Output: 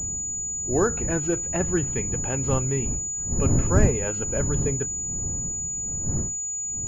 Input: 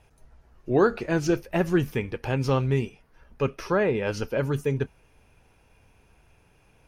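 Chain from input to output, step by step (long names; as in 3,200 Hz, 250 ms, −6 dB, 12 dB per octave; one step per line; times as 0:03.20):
wind on the microphone 140 Hz −26 dBFS
switching amplifier with a slow clock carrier 6,900 Hz
level −2.5 dB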